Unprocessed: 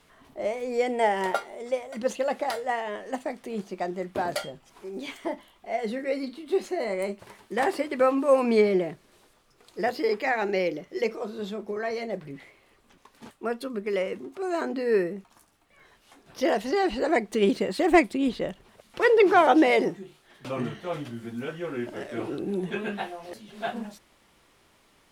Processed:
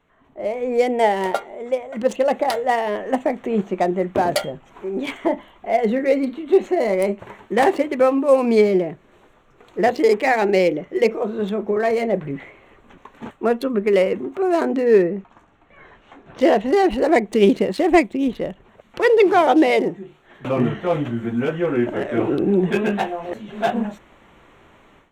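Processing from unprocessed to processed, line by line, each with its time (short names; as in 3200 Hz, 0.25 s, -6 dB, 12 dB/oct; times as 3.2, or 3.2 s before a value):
14.85–16.91 air absorption 74 m
whole clip: Wiener smoothing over 9 samples; dynamic EQ 1400 Hz, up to -5 dB, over -42 dBFS, Q 1.4; AGC gain up to 16 dB; gain -3 dB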